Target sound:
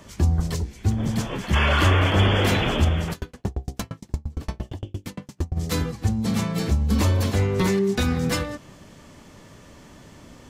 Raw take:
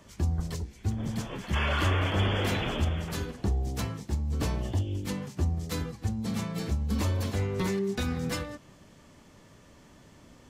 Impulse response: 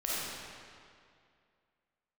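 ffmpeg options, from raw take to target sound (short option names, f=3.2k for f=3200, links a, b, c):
-filter_complex "[0:a]asplit=3[a][b][c];[a]afade=t=out:st=3.12:d=0.02[d];[b]aeval=exprs='val(0)*pow(10,-39*if(lt(mod(8.7*n/s,1),2*abs(8.7)/1000),1-mod(8.7*n/s,1)/(2*abs(8.7)/1000),(mod(8.7*n/s,1)-2*abs(8.7)/1000)/(1-2*abs(8.7)/1000))/20)':c=same,afade=t=in:st=3.12:d=0.02,afade=t=out:st=5.55:d=0.02[e];[c]afade=t=in:st=5.55:d=0.02[f];[d][e][f]amix=inputs=3:normalize=0,volume=8dB"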